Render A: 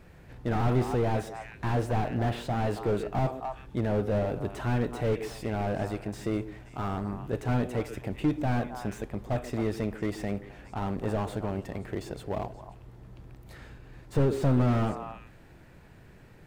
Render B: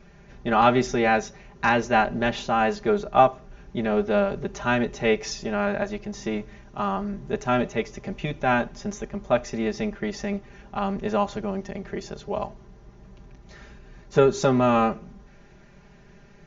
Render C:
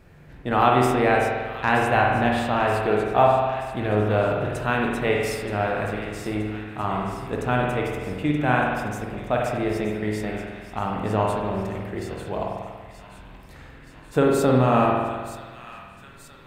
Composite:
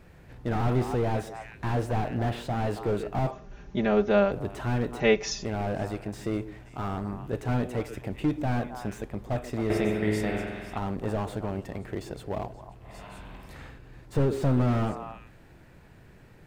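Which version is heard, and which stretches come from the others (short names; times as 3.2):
A
3.31–4.32 from B
5–5.45 from B
9.7–10.78 from C
12.88–13.74 from C, crossfade 0.16 s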